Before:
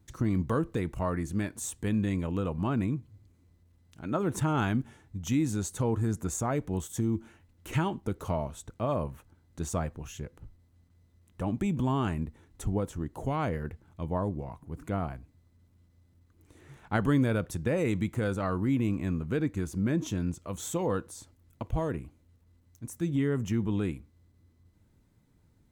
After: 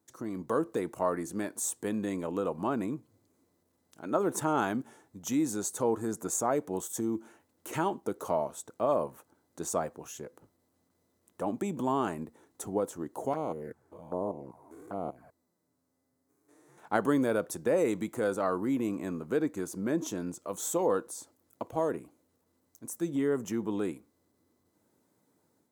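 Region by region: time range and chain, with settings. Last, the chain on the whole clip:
13.33–16.78 stepped spectrum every 0.2 s + bell 3000 Hz -6.5 dB 0.63 oct + envelope flanger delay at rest 8.1 ms, full sweep at -30 dBFS
whole clip: HPF 390 Hz 12 dB/oct; bell 2600 Hz -11 dB 1.8 oct; AGC gain up to 6 dB

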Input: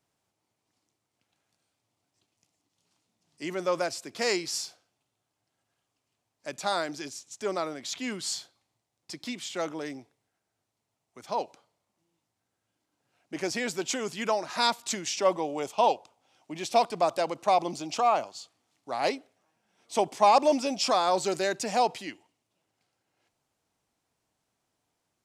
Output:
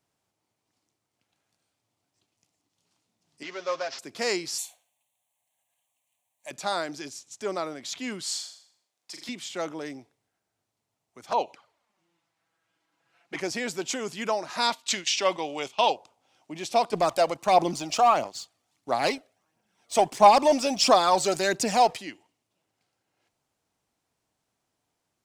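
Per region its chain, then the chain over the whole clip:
3.43–3.99 CVSD 32 kbps + HPF 900 Hz 6 dB/oct + comb 7.4 ms, depth 59%
4.58–6.51 tone controls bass -14 dB, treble +12 dB + fixed phaser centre 1400 Hz, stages 6
8.23–9.29 HPF 820 Hz 6 dB/oct + flutter echo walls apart 7 m, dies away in 0.57 s
11.3–13.4 bell 1700 Hz +12 dB 2.9 oct + envelope flanger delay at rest 6.2 ms, full sweep at -23.5 dBFS
14.7–15.9 gate -38 dBFS, range -11 dB + bell 3100 Hz +12.5 dB 2 oct + resonator 130 Hz, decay 0.27 s, mix 30%
16.93–21.97 high shelf 8300 Hz +4 dB + sample leveller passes 1 + phaser 1.5 Hz, delay 1.8 ms, feedback 42%
whole clip: dry

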